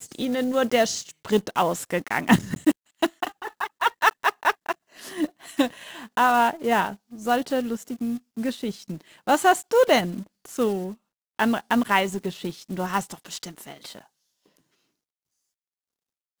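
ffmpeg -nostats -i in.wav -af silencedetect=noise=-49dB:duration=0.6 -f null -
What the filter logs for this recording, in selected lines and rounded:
silence_start: 14.57
silence_end: 16.40 | silence_duration: 1.83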